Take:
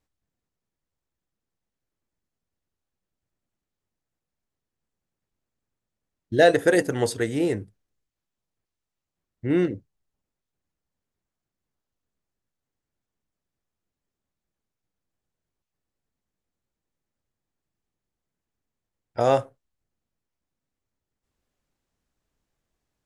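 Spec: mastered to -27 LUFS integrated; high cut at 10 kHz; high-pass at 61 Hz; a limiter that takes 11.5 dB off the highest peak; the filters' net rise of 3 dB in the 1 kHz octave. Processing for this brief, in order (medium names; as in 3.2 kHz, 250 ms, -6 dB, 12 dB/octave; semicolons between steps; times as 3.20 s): high-pass 61 Hz; low-pass 10 kHz; peaking EQ 1 kHz +5 dB; trim -1 dB; peak limiter -14.5 dBFS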